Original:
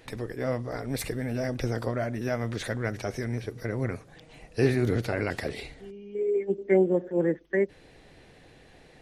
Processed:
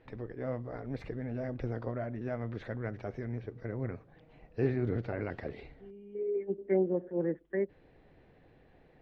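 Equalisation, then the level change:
high-frequency loss of the air 210 metres
high-shelf EQ 2,800 Hz −11.5 dB
−6.0 dB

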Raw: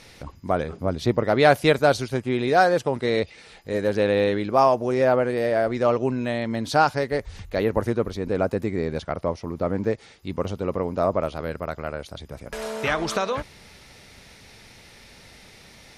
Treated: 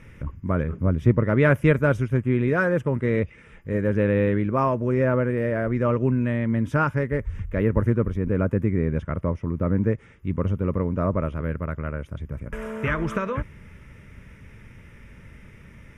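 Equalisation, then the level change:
bass and treble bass +11 dB, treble −9 dB
parametric band 730 Hz +10 dB 1.1 octaves
phaser with its sweep stopped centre 1,800 Hz, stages 4
−2.0 dB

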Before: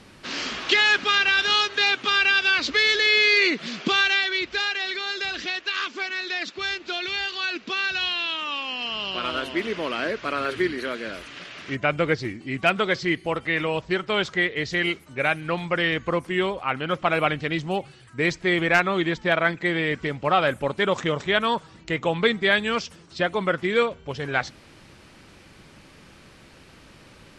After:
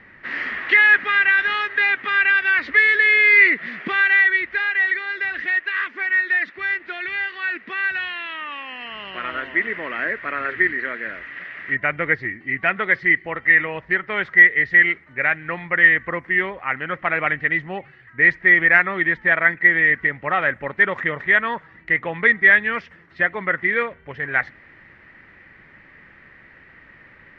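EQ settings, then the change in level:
low-pass with resonance 1,900 Hz, resonance Q 10
−4.5 dB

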